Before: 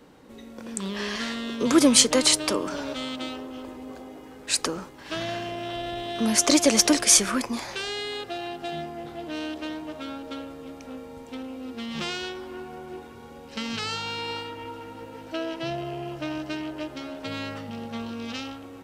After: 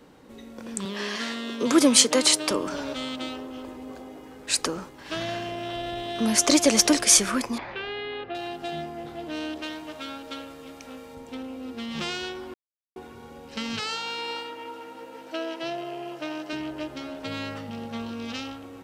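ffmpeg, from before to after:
ffmpeg -i in.wav -filter_complex "[0:a]asettb=1/sr,asplit=3[link_01][link_02][link_03];[link_01]atrim=end=0.854[link_04];[link_02]atrim=start=0.85:end=2.51,asetpts=PTS-STARTPTS,afade=type=in:duration=0.004:curve=qsin,afade=type=out:start_time=1.656:duration=0.004:curve=qsin,highpass=190[link_05];[link_03]atrim=start=2.506[link_06];[link_04][link_05]acrossfade=duration=0.004:curve1=hsin:curve2=qsin[link_07];[link_07][link_06]acrossfade=duration=0.004:curve1=qsin:curve2=hsin,asettb=1/sr,asplit=3[link_08][link_09][link_10];[link_08]atrim=end=7.584[link_11];[link_09]atrim=start=7.58:end=8.35,asetpts=PTS-STARTPTS,afade=type=in:duration=0.004:curve=qsin,afade=type=out:start_time=0.766:duration=0.004:curve=qsin,lowpass=frequency=2900:width=0.5412,lowpass=frequency=2900:width=1.3066[link_12];[link_10]atrim=start=8.346[link_13];[link_11][link_12]acrossfade=duration=0.004:curve1=hsin:curve2=qsin[link_14];[link_14][link_13]acrossfade=duration=0.004:curve1=qsin:curve2=hsin,asettb=1/sr,asplit=3[link_15][link_16][link_17];[link_15]atrim=end=9.624[link_18];[link_16]atrim=start=9.62:end=11.15,asetpts=PTS-STARTPTS,afade=type=in:duration=0.004:curve=qsin,afade=type=out:start_time=1.526:duration=0.004:curve=qsin,tiltshelf=frequency=970:gain=-4.5[link_19];[link_17]atrim=start=11.146[link_20];[link_18][link_19]acrossfade=duration=0.004:curve1=hsin:curve2=qsin[link_21];[link_21][link_20]acrossfade=duration=0.004:curve1=qsin:curve2=hsin,asettb=1/sr,asplit=3[link_22][link_23][link_24];[link_22]atrim=end=13.804[link_25];[link_23]atrim=start=13.8:end=16.53,asetpts=PTS-STARTPTS,afade=type=in:duration=0.004:curve=qsin,afade=type=out:start_time=2.726:duration=0.004:curve=qsin,highpass=300[link_26];[link_24]atrim=start=16.526[link_27];[link_25][link_26]acrossfade=duration=0.004:curve1=hsin:curve2=qsin[link_28];[link_28][link_27]acrossfade=duration=0.004:curve1=qsin:curve2=hsin,asplit=3[link_29][link_30][link_31];[link_29]atrim=end=12.54,asetpts=PTS-STARTPTS,afade=type=out:start_time=12.536:duration=0.004:curve=hsin[link_32];[link_30]atrim=start=12.54:end=12.96,asetpts=PTS-STARTPTS,volume=0[link_33];[link_31]atrim=start=12.96,asetpts=PTS-STARTPTS,afade=type=in:duration=0.004:curve=hsin[link_34];[link_32][link_33][link_34]concat=n=3:v=0:a=1" out.wav

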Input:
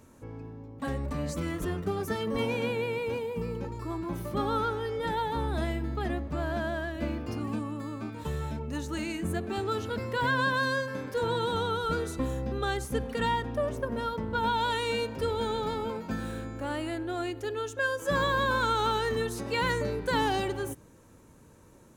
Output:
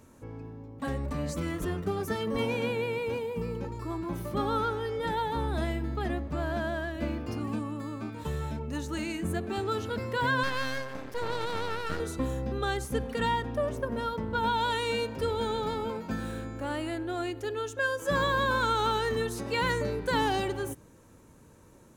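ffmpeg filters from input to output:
ffmpeg -i in.wav -filter_complex "[0:a]asettb=1/sr,asplit=3[link_01][link_02][link_03];[link_01]atrim=end=10.434[link_04];[link_02]atrim=start=10.43:end=12,asetpts=PTS-STARTPTS,afade=type=in:duration=0.004:curve=qsin,afade=type=out:start_time=1.566:duration=0.004:curve=qsin,aeval=exprs='max(val(0),0)':channel_layout=same[link_05];[link_03]atrim=start=11.996[link_06];[link_04][link_05]acrossfade=duration=0.004:curve1=hsin:curve2=qsin[link_07];[link_07][link_06]acrossfade=duration=0.004:curve1=qsin:curve2=hsin" out.wav

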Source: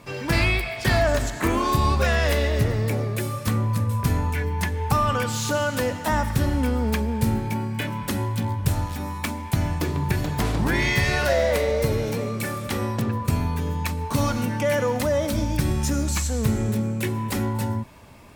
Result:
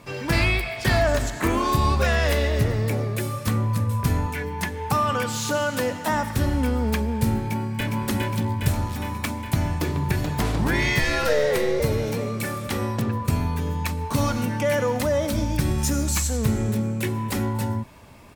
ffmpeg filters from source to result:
ffmpeg -i in.wav -filter_complex "[0:a]asettb=1/sr,asplit=3[link_01][link_02][link_03];[link_01]atrim=end=4.264[link_04];[link_02]atrim=start=4.26:end=6.37,asetpts=PTS-STARTPTS,afade=type=in:duration=0.004:curve=qsin,afade=type=out:start_time=2.106:duration=0.004:curve=qsin,highpass=120[link_05];[link_03]atrim=start=6.366[link_06];[link_04][link_05]acrossfade=duration=0.004:curve1=hsin:curve2=qsin[link_07];[link_07][link_06]acrossfade=duration=0.004:curve1=qsin:curve2=hsin,asplit=2[link_08][link_09];[link_09]afade=type=in:start_time=7.38:duration=0.01,afade=type=out:start_time=7.94:duration=0.01,aecho=0:1:410|820|1230|1640|2050|2460|2870|3280|3690|4100|4510|4920:0.749894|0.524926|0.367448|0.257214|0.18005|0.126035|0.0882243|0.061757|0.0432299|0.0302609|0.0211827|0.0148279[link_10];[link_08][link_10]amix=inputs=2:normalize=0,asettb=1/sr,asplit=3[link_11][link_12][link_13];[link_11]atrim=end=10.994[link_14];[link_12]atrim=start=10.99:end=11.8,asetpts=PTS-STARTPTS,afade=type=in:duration=0.004:curve=qsin,afade=type=out:start_time=0.806:duration=0.004:curve=qsin,afreqshift=-71[link_15];[link_13]atrim=start=11.796[link_16];[link_14][link_15]acrossfade=duration=0.004:curve1=hsin:curve2=qsin[link_17];[link_17][link_16]acrossfade=duration=0.004:curve1=qsin:curve2=hsin,asettb=1/sr,asplit=3[link_18][link_19][link_20];[link_18]atrim=end=15.784[link_21];[link_19]atrim=start=15.78:end=16.37,asetpts=PTS-STARTPTS,afade=type=in:duration=0.004:curve=qsin,afade=type=out:start_time=0.586:duration=0.004:curve=qsin,highshelf=frequency=7600:gain=7[link_22];[link_20]atrim=start=16.366[link_23];[link_21][link_22]acrossfade=duration=0.004:curve1=hsin:curve2=qsin[link_24];[link_24][link_23]acrossfade=duration=0.004:curve1=qsin:curve2=hsin" out.wav

